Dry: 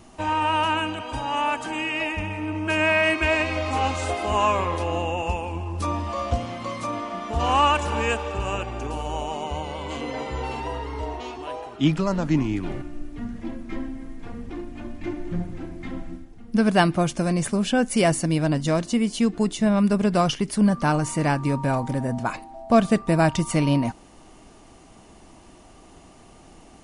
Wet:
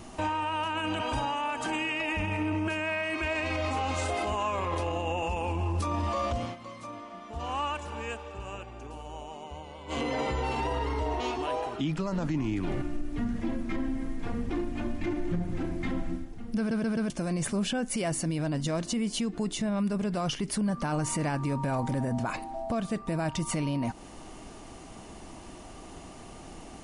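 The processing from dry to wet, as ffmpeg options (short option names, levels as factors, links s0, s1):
-filter_complex "[0:a]asplit=7[s0][s1][s2][s3][s4][s5][s6];[s0]atrim=end=6.56,asetpts=PTS-STARTPTS,afade=t=out:st=6.43:d=0.13:silence=0.158489[s7];[s1]atrim=start=6.56:end=9.87,asetpts=PTS-STARTPTS,volume=0.158[s8];[s2]atrim=start=9.87:end=16.712,asetpts=PTS-STARTPTS,afade=t=in:d=0.13:silence=0.158489[s9];[s3]atrim=start=16.578:end=16.712[s10];[s4]atrim=start=16.578:end=16.712[s11];[s5]atrim=start=16.578:end=16.712[s12];[s6]atrim=start=17.098[s13];[s7][s8][s9]concat=n=3:v=0:a=1[s14];[s14][s10]acrossfade=d=0.004:c1=hsin:c2=hsin[s15];[s15][s11]acrossfade=d=0.004:c1=hsin:c2=hsin[s16];[s16][s12]acrossfade=d=0.004:c1=hsin:c2=hsin[s17];[s17][s13]acrossfade=d=0.004:c1=hsin:c2=hsin,acompressor=threshold=0.0398:ratio=4,alimiter=level_in=1.19:limit=0.0631:level=0:latency=1:release=14,volume=0.841,volume=1.5"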